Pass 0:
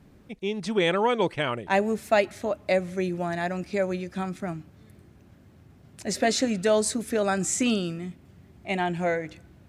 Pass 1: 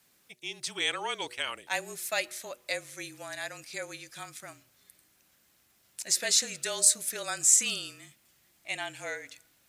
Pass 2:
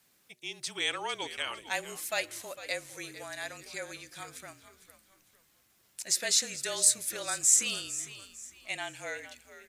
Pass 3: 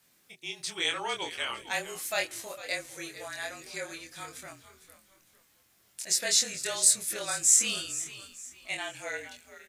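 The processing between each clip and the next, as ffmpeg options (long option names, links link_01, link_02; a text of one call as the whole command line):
ffmpeg -i in.wav -af "aderivative,afreqshift=-33,bandreject=frequency=121.8:width_type=h:width=4,bandreject=frequency=243.6:width_type=h:width=4,bandreject=frequency=365.4:width_type=h:width=4,bandreject=frequency=487.2:width_type=h:width=4,bandreject=frequency=609:width_type=h:width=4,volume=7.5dB" out.wav
ffmpeg -i in.wav -filter_complex "[0:a]asplit=4[link_01][link_02][link_03][link_04];[link_02]adelay=452,afreqshift=-73,volume=-14dB[link_05];[link_03]adelay=904,afreqshift=-146,volume=-23.6dB[link_06];[link_04]adelay=1356,afreqshift=-219,volume=-33.3dB[link_07];[link_01][link_05][link_06][link_07]amix=inputs=4:normalize=0,volume=-1.5dB" out.wav
ffmpeg -i in.wav -filter_complex "[0:a]asplit=2[link_01][link_02];[link_02]adelay=24,volume=-3dB[link_03];[link_01][link_03]amix=inputs=2:normalize=0" out.wav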